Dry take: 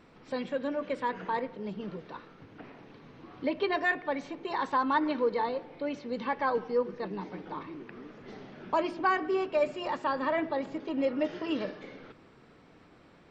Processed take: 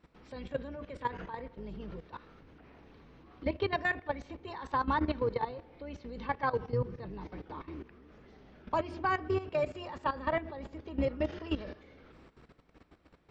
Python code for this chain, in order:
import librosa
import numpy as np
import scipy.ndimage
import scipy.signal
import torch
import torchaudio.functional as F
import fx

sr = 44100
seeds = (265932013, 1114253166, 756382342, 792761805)

y = fx.octave_divider(x, sr, octaves=2, level_db=-1.0)
y = fx.peak_eq(y, sr, hz=130.0, db=13.0, octaves=0.67, at=(6.61, 7.11))
y = fx.level_steps(y, sr, step_db=14)